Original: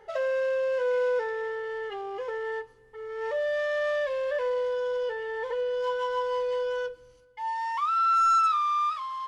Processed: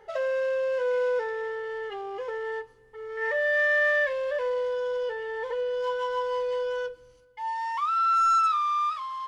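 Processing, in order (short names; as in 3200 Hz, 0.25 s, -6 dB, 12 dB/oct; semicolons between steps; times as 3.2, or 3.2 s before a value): 3.17–4.13 bell 1900 Hz +14.5 dB 0.38 oct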